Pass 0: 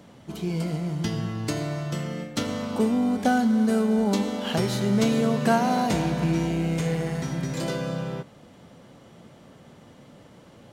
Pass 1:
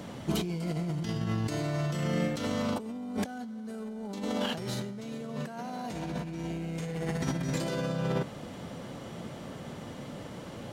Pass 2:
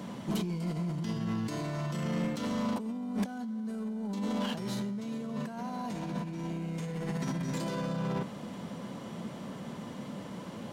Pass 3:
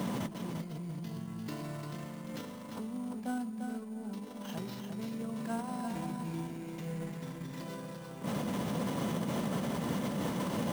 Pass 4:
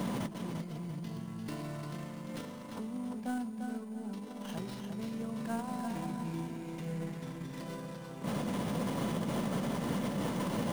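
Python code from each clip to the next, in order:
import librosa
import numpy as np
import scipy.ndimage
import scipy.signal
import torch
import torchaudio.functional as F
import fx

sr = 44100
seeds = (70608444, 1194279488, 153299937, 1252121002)

y1 = fx.over_compress(x, sr, threshold_db=-34.0, ratio=-1.0)
y2 = fx.low_shelf(y1, sr, hz=81.0, db=-12.0)
y2 = 10.0 ** (-29.5 / 20.0) * np.tanh(y2 / 10.0 ** (-29.5 / 20.0))
y2 = fx.small_body(y2, sr, hz=(200.0, 1000.0), ring_ms=45, db=9)
y2 = F.gain(torch.from_numpy(y2), -1.5).numpy()
y3 = fx.over_compress(y2, sr, threshold_db=-42.0, ratio=-1.0)
y3 = fx.echo_feedback(y3, sr, ms=347, feedback_pct=18, wet_db=-6.0)
y3 = fx.sample_hold(y3, sr, seeds[0], rate_hz=9300.0, jitter_pct=0)
y3 = F.gain(torch.from_numpy(y3), 2.5).numpy()
y4 = fx.tracing_dist(y3, sr, depth_ms=0.087)
y4 = y4 + 10.0 ** (-16.5 / 20.0) * np.pad(y4, (int(685 * sr / 1000.0), 0))[:len(y4)]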